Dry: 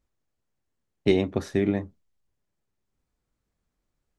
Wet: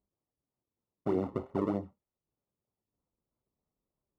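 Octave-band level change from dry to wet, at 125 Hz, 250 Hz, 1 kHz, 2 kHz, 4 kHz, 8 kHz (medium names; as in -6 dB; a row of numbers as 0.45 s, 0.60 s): -9.5 dB, -8.0 dB, +0.5 dB, -18.5 dB, under -20 dB, under -20 dB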